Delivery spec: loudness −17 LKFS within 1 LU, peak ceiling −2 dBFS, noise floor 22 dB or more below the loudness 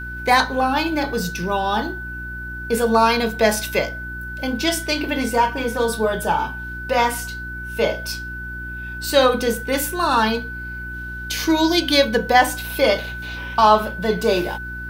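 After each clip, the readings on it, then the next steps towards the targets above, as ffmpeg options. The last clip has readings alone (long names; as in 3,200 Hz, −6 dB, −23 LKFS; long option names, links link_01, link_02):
mains hum 60 Hz; hum harmonics up to 360 Hz; level of the hum −32 dBFS; interfering tone 1,500 Hz; level of the tone −30 dBFS; integrated loudness −20.0 LKFS; sample peak −2.0 dBFS; target loudness −17.0 LKFS
→ -af "bandreject=frequency=60:width_type=h:width=4,bandreject=frequency=120:width_type=h:width=4,bandreject=frequency=180:width_type=h:width=4,bandreject=frequency=240:width_type=h:width=4,bandreject=frequency=300:width_type=h:width=4,bandreject=frequency=360:width_type=h:width=4"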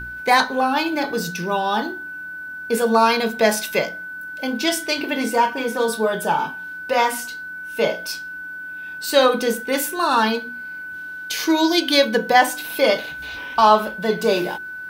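mains hum none found; interfering tone 1,500 Hz; level of the tone −30 dBFS
→ -af "bandreject=frequency=1500:width=30"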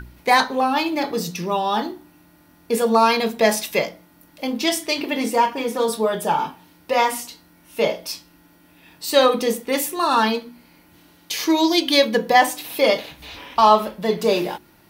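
interfering tone none found; integrated loudness −20.0 LKFS; sample peak −2.0 dBFS; target loudness −17.0 LKFS
→ -af "volume=3dB,alimiter=limit=-2dB:level=0:latency=1"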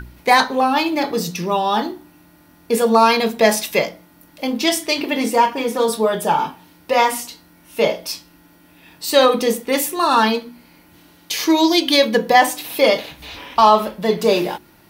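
integrated loudness −17.5 LKFS; sample peak −2.0 dBFS; background noise floor −51 dBFS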